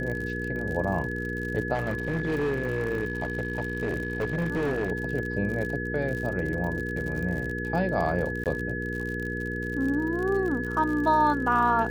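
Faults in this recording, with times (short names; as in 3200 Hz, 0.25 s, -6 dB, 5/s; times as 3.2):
crackle 57/s -32 dBFS
hum 60 Hz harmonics 8 -33 dBFS
tone 1700 Hz -33 dBFS
1.74–4.92 clipped -23 dBFS
8.44–8.46 gap 18 ms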